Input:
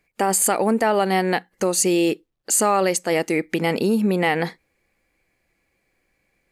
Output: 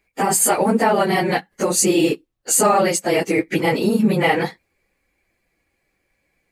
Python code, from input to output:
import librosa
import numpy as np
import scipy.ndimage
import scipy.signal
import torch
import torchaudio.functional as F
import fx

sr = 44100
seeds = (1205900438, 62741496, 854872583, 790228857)

p1 = fx.phase_scramble(x, sr, seeds[0], window_ms=50)
p2 = np.sign(p1) * np.maximum(np.abs(p1) - 10.0 ** (-38.5 / 20.0), 0.0)
y = p1 + (p2 * 10.0 ** (-8.0 / 20.0))